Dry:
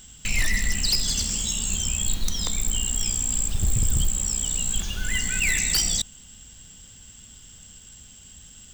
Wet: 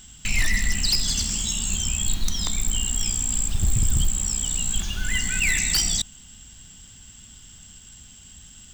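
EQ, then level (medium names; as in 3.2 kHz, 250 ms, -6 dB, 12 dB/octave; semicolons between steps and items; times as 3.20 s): peaking EQ 490 Hz -10 dB 0.36 oct; treble shelf 9.8 kHz -4 dB; +1.5 dB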